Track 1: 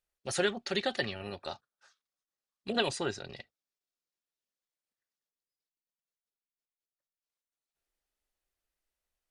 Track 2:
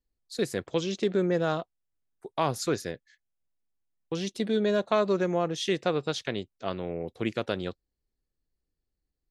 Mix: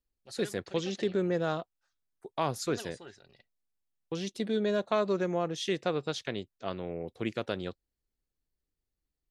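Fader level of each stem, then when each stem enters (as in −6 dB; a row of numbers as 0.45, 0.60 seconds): −15.5, −3.5 decibels; 0.00, 0.00 seconds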